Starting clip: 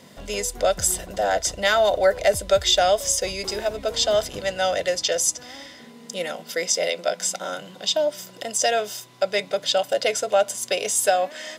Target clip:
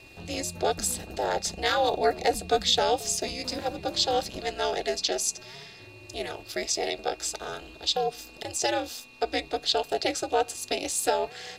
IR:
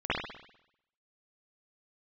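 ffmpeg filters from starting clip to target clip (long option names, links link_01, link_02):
-af "aeval=exprs='val(0)+0.00631*sin(2*PI*2600*n/s)':channel_layout=same,equalizer=frequency=4200:width=6.9:gain=13.5,aeval=exprs='val(0)*sin(2*PI*130*n/s)':channel_layout=same,equalizer=frequency=120:width=0.34:gain=4,volume=-4dB"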